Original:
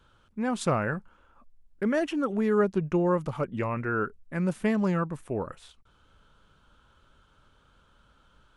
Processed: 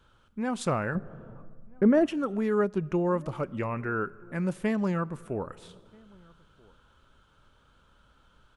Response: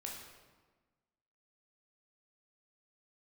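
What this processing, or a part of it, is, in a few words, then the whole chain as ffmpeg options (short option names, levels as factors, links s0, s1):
compressed reverb return: -filter_complex "[0:a]asplit=2[s0][s1];[1:a]atrim=start_sample=2205[s2];[s1][s2]afir=irnorm=-1:irlink=0,acompressor=threshold=0.0112:ratio=4,volume=0.473[s3];[s0][s3]amix=inputs=2:normalize=0,asettb=1/sr,asplit=3[s4][s5][s6];[s4]atrim=end=0.954[s7];[s5]atrim=start=0.95:end=2.06,asetpts=PTS-STARTPTS,afade=t=in:d=0.004:c=qsin,afade=t=out:st=1.106:d=0.004:c=qsin,tiltshelf=f=1400:g=9[s8];[s6]atrim=start=2.056[s9];[s7][s8]acrossfade=d=0.004:c1=hsin:c2=qsin[s10];[s10][s9]acrossfade=d=0.004:c1=qsin:c2=hsin,asplit=2[s11][s12];[s12]adelay=1283,volume=0.0447,highshelf=f=4000:g=-28.9[s13];[s11][s13]amix=inputs=2:normalize=0,volume=0.75"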